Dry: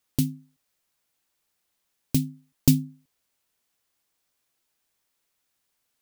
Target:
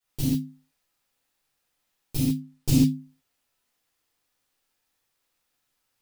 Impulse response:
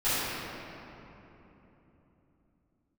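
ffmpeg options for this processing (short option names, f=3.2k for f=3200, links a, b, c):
-filter_complex "[0:a]asettb=1/sr,asplit=3[a][b][c];[a]atrim=end=2.274[d];[b]atrim=start=2.27:end=2.77,asetpts=PTS-STARTPTS,afade=t=in:d=0.004:c=qsin,afade=t=out:st=0.496:d=0.004:c=qsin,highshelf=f=11k:g=-6[e];[c]atrim=start=2.766[f];[d][e]acrossfade=d=0.004:c1=hsin:c2=qsin[g];[g][f]acrossfade=d=0.004:c1=qsin:c2=hsin[h];[1:a]atrim=start_sample=2205,afade=t=out:st=0.21:d=0.01,atrim=end_sample=9702[i];[h][i]afir=irnorm=-1:irlink=0,volume=-9dB"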